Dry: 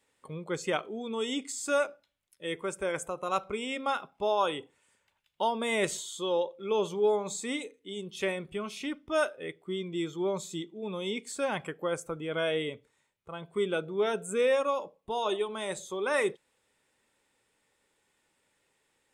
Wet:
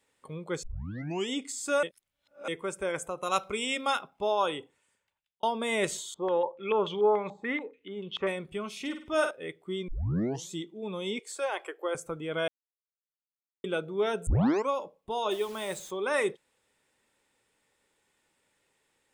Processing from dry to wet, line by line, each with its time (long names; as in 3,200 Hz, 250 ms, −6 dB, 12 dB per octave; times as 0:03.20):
0:00.63: tape start 0.66 s
0:01.83–0:02.48: reverse
0:03.22–0:03.99: high-shelf EQ 2,600 Hz +10.5 dB
0:04.54–0:05.43: fade out
0:06.14–0:08.27: low-pass on a step sequencer 6.9 Hz 790–3,200 Hz
0:08.80–0:09.31: flutter between parallel walls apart 8.8 metres, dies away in 0.43 s
0:09.88: tape start 0.62 s
0:11.19–0:11.95: elliptic high-pass filter 340 Hz
0:12.48–0:13.64: silence
0:14.27: tape start 0.42 s
0:15.31–0:15.91: bit-depth reduction 8 bits, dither none